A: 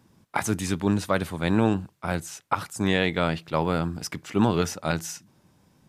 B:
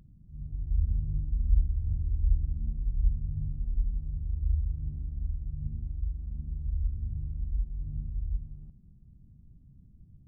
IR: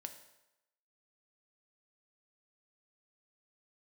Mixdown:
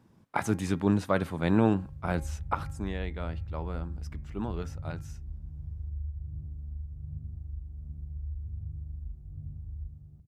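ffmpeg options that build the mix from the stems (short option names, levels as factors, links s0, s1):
-filter_complex "[0:a]highshelf=f=2600:g=-9.5,volume=0.841,afade=t=out:st=2.37:d=0.55:silence=0.266073[s0];[1:a]highpass=f=66:w=0.5412,highpass=f=66:w=1.3066,equalizer=f=220:t=o:w=1.3:g=-8.5,acompressor=threshold=0.02:ratio=6,adelay=1500,volume=1.19[s1];[s0][s1]amix=inputs=2:normalize=0,bandreject=f=270:t=h:w=4,bandreject=f=540:t=h:w=4,bandreject=f=810:t=h:w=4,bandreject=f=1080:t=h:w=4,bandreject=f=1350:t=h:w=4,bandreject=f=1620:t=h:w=4,bandreject=f=1890:t=h:w=4,bandreject=f=2160:t=h:w=4,bandreject=f=2430:t=h:w=4"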